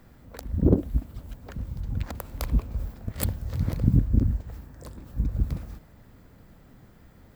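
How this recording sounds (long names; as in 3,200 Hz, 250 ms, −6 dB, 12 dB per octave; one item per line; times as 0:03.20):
background noise floor −53 dBFS
spectral slope −10.5 dB per octave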